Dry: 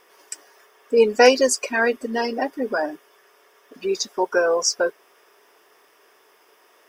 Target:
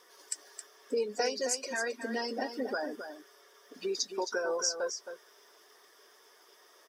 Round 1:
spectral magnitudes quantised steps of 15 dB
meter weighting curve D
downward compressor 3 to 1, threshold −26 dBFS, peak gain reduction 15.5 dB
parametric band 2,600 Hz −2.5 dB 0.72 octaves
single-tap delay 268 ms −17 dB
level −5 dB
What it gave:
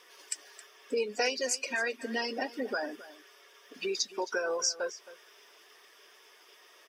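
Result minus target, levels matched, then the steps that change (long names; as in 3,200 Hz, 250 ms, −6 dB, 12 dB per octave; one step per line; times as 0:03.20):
echo-to-direct −8 dB; 2,000 Hz band +2.5 dB
change: parametric band 2,600 Hz −14.5 dB 0.72 octaves
change: single-tap delay 268 ms −9 dB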